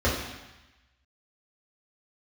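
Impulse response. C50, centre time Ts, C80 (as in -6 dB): 3.0 dB, 52 ms, 5.5 dB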